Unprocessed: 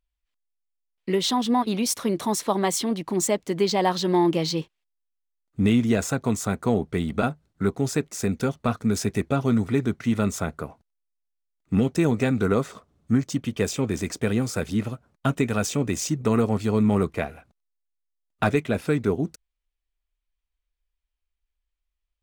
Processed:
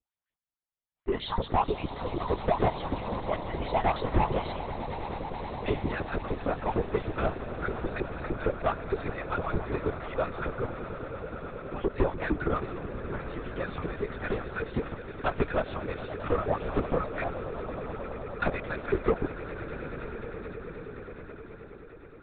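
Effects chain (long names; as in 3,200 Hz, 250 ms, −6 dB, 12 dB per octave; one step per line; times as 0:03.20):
parametric band 2,800 Hz −10 dB 1.5 octaves
auto-filter high-pass saw up 6.5 Hz 290–2,500 Hz
soft clipping −18.5 dBFS, distortion −10 dB
on a send: echo that builds up and dies away 105 ms, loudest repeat 8, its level −16.5 dB
on the sum: linear-prediction vocoder at 8 kHz whisper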